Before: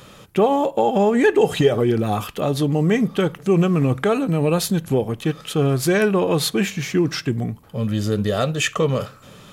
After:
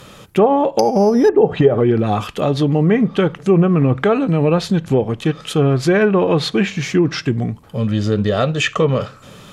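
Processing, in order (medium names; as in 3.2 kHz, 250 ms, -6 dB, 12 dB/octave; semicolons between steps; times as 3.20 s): 0.79–1.29 s: careless resampling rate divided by 8×, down none, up zero stuff; low-pass that closes with the level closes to 900 Hz, closed at -10 dBFS; trim +4 dB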